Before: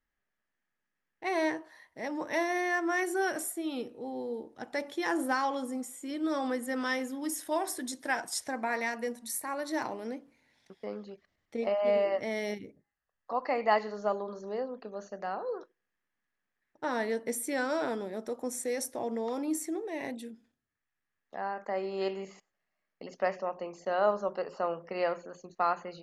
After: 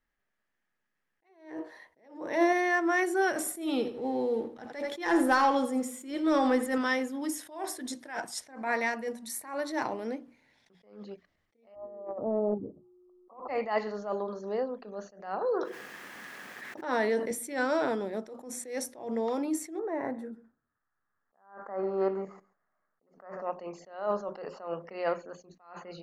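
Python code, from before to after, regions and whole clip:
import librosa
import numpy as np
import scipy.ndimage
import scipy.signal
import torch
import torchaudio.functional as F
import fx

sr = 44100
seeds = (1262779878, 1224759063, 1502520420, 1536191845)

y = fx.chain(x, sr, fx.peak_eq(hz=420.0, db=8.0, octaves=1.4),
    fx.hum_notches(base_hz=60, count=10), at=(1.29, 2.53))
y = fx.chain(y, sr, fx.leveller(passes=1),
    fx.echo_feedback(ms=83, feedback_pct=28, wet_db=-12.0), at=(3.38, 6.78))
y = fx.steep_lowpass(y, sr, hz=1300.0, slope=96, at=(11.74, 13.48), fade=0.02)
y = fx.over_compress(y, sr, threshold_db=-34.0, ratio=-0.5, at=(11.74, 13.48), fade=0.02)
y = fx.dmg_buzz(y, sr, base_hz=60.0, harmonics=6, level_db=-55.0, tilt_db=-1, odd_only=False, at=(11.74, 13.48), fade=0.02)
y = fx.chain(y, sr, fx.highpass(hz=190.0, slope=12),
    fx.env_flatten(amount_pct=70), at=(15.41, 17.31))
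y = fx.chain(y, sr, fx.high_shelf_res(hz=2000.0, db=-13.5, q=3.0),
    fx.echo_single(ms=136, db=-20.0), at=(19.79, 23.42))
y = fx.high_shelf(y, sr, hz=5900.0, db=-7.5)
y = fx.hum_notches(y, sr, base_hz=60, count=5)
y = fx.attack_slew(y, sr, db_per_s=120.0)
y = y * 10.0 ** (3.5 / 20.0)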